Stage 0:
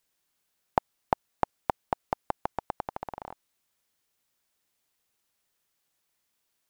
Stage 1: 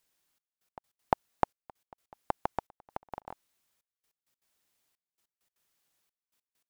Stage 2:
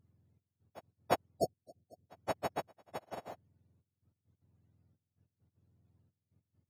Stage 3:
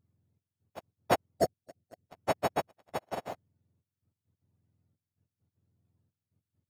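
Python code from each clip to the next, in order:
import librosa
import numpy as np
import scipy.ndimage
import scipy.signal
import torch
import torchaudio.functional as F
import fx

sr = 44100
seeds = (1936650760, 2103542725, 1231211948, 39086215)

y1 = fx.step_gate(x, sr, bpm=197, pattern='xxxxx...x..x.xx', floor_db=-24.0, edge_ms=4.5)
y2 = fx.octave_mirror(y1, sr, pivot_hz=760.0)
y2 = fx.spec_erase(y2, sr, start_s=1.39, length_s=0.69, low_hz=750.0, high_hz=3900.0)
y2 = y2 * 10.0 ** (3.0 / 20.0)
y3 = fx.leveller(y2, sr, passes=2)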